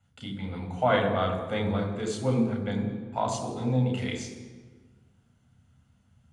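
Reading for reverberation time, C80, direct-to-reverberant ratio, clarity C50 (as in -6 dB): 1.5 s, 8.0 dB, 0.5 dB, 6.0 dB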